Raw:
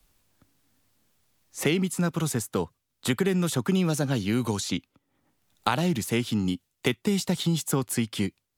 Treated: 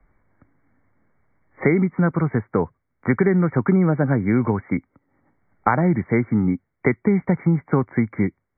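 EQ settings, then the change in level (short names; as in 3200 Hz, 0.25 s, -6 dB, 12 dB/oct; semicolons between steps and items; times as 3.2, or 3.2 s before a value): brick-wall FIR low-pass 2300 Hz; +7.0 dB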